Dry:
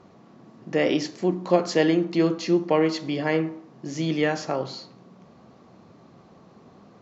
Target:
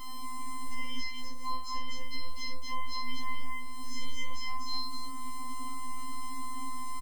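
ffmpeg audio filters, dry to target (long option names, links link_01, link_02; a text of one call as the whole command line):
ffmpeg -i in.wav -filter_complex "[0:a]bandreject=frequency=3700:width=13,bandreject=frequency=67.48:width_type=h:width=4,bandreject=frequency=134.96:width_type=h:width=4,bandreject=frequency=202.44:width_type=h:width=4,acrusher=bits=8:mix=0:aa=0.000001,acompressor=threshold=-46dB:ratio=2,lowshelf=frequency=230:width_type=q:width=3:gain=10.5,afftfilt=real='hypot(re,im)*cos(PI*b)':imag='0':win_size=512:overlap=0.75,aeval=exprs='val(0)+0.000708*(sin(2*PI*50*n/s)+sin(2*PI*2*50*n/s)/2+sin(2*PI*3*50*n/s)/3+sin(2*PI*4*50*n/s)/4+sin(2*PI*5*50*n/s)/5)':channel_layout=same,acrossover=split=180|1900|4400[link_01][link_02][link_03][link_04];[link_01]acompressor=threshold=-48dB:ratio=4[link_05];[link_02]acompressor=threshold=-51dB:ratio=4[link_06];[link_03]acompressor=threshold=-57dB:ratio=4[link_07];[link_04]acompressor=threshold=-58dB:ratio=4[link_08];[link_05][link_06][link_07][link_08]amix=inputs=4:normalize=0,aeval=exprs='0.015*(cos(1*acos(clip(val(0)/0.015,-1,1)))-cos(1*PI/2))+0.000299*(cos(2*acos(clip(val(0)/0.015,-1,1)))-cos(2*PI/2))':channel_layout=same,asplit=2[link_09][link_10];[link_10]aecho=0:1:52.48|244.9:0.631|0.708[link_11];[link_09][link_11]amix=inputs=2:normalize=0,afftfilt=real='re*3.46*eq(mod(b,12),0)':imag='im*3.46*eq(mod(b,12),0)':win_size=2048:overlap=0.75,volume=10.5dB" out.wav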